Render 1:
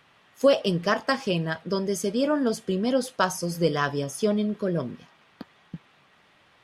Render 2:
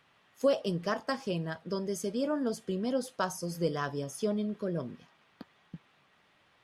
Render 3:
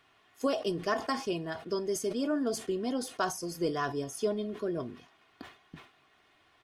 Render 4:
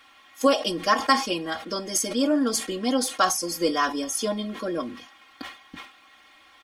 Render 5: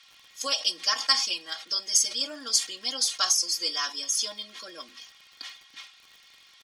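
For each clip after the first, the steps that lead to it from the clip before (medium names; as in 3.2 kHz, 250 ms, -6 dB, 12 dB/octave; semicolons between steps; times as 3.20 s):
dynamic bell 2.5 kHz, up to -5 dB, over -39 dBFS, Q 0.83; trim -7 dB
comb 2.8 ms, depth 57%; decay stretcher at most 130 dB/s
tilt shelf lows -4.5 dB, about 730 Hz; comb 3.7 ms, depth 99%; trim +6 dB
band-pass filter 5.2 kHz, Q 1.7; crackle 82 per s -50 dBFS; trim +7.5 dB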